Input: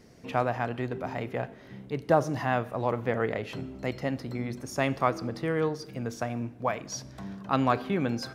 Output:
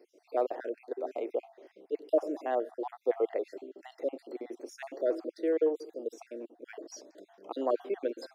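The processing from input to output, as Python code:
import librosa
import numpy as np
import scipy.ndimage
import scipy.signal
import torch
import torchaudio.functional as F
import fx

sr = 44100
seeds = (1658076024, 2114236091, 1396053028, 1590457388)

y = fx.spec_dropout(x, sr, seeds[0], share_pct=46)
y = scipy.signal.sosfilt(scipy.signal.ellip(4, 1.0, 70, 330.0, 'highpass', fs=sr, output='sos'), y)
y = fx.low_shelf_res(y, sr, hz=760.0, db=10.5, q=1.5)
y = F.gain(torch.from_numpy(y), -9.0).numpy()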